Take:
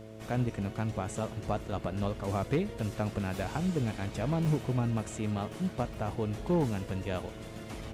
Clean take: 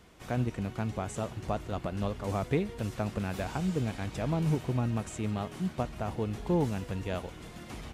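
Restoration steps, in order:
clipped peaks rebuilt −21 dBFS
hum removal 109.6 Hz, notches 6
repair the gap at 0:00.92/0:04.45/0:05.53/0:05.94, 1.7 ms

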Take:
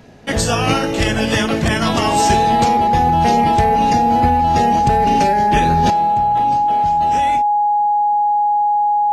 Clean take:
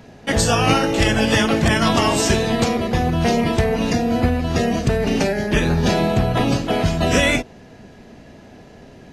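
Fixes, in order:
notch filter 830 Hz, Q 30
level 0 dB, from 0:05.90 +11 dB

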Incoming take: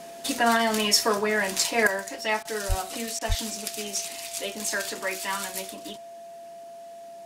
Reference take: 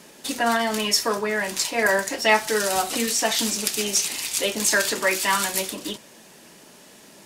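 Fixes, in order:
notch filter 680 Hz, Q 30
high-pass at the plosives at 0:02.68/0:03.28
repair the gap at 0:02.43/0:03.19, 20 ms
level 0 dB, from 0:01.87 +8.5 dB

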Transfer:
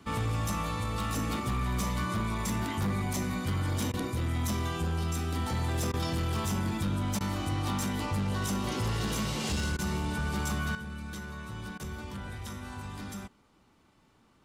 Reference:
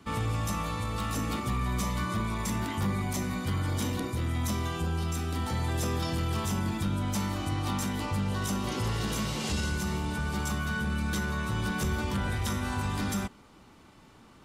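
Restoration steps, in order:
clipped peaks rebuilt −25.5 dBFS
repair the gap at 0:03.92/0:05.92/0:07.19/0:09.77/0:11.78, 15 ms
level 0 dB, from 0:10.75 +9.5 dB

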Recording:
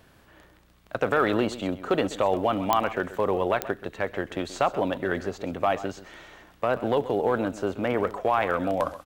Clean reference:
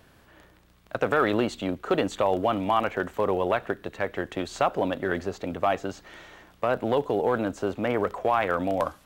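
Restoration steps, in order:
click removal
echo removal 130 ms −15 dB

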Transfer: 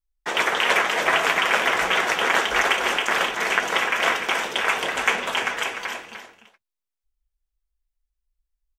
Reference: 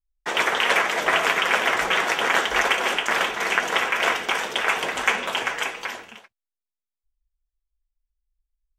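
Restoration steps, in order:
echo removal 298 ms −9 dB

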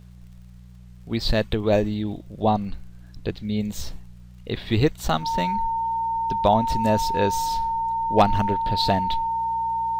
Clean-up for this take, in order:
clipped peaks rebuilt −7 dBFS
click removal
hum removal 60.4 Hz, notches 3
notch filter 910 Hz, Q 30

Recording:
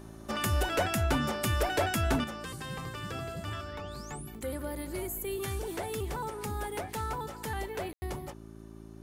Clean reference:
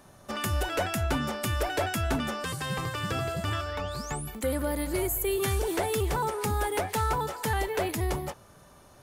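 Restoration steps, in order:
clipped peaks rebuilt −20.5 dBFS
hum removal 55.1 Hz, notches 7
ambience match 0:07.93–0:08.02
level 0 dB, from 0:02.24 +7.5 dB

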